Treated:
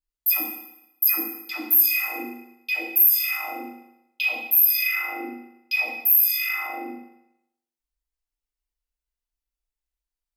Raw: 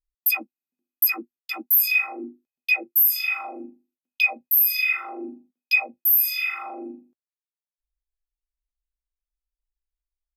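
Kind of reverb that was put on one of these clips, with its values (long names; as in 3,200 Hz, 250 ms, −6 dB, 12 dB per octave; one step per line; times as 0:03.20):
feedback delay network reverb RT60 0.84 s, low-frequency decay 0.9×, high-frequency decay 1×, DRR −4.5 dB
level −4 dB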